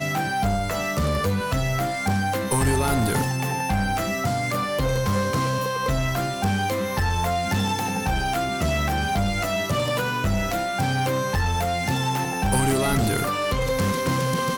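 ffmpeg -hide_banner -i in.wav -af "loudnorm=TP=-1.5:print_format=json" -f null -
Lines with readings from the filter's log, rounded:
"input_i" : "-23.5",
"input_tp" : "-13.4",
"input_lra" : "1.0",
"input_thresh" : "-33.5",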